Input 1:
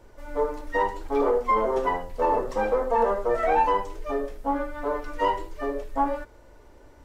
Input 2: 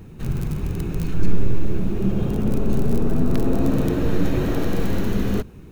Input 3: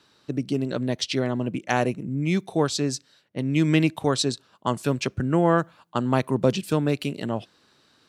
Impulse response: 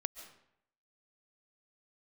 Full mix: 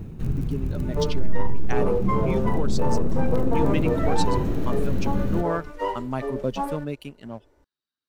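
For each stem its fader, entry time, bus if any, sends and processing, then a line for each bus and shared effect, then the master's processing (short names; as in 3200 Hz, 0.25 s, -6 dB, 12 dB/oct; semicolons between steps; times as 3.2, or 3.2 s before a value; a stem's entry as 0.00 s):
-9.0 dB, 0.60 s, no send, bell 410 Hz +5.5 dB 0.77 oct
-5.5 dB, 0.00 s, no send, low shelf 460 Hz +9.5 dB; auto duck -9 dB, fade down 0.35 s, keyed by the third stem
-8.5 dB, 0.00 s, no send, per-bin expansion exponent 1.5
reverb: off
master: sample leveller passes 1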